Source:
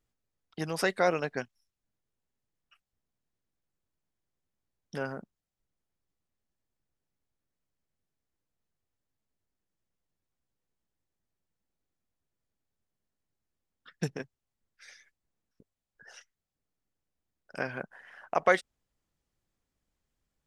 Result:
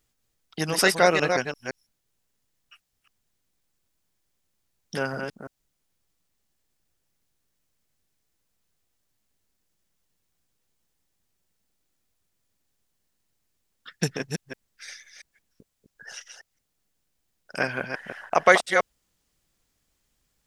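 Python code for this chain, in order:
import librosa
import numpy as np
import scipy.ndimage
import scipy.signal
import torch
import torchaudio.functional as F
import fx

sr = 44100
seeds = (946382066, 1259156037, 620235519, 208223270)

y = fx.reverse_delay(x, sr, ms=171, wet_db=-5.5)
y = fx.high_shelf(y, sr, hz=2200.0, db=8.5)
y = F.gain(torch.from_numpy(y), 5.5).numpy()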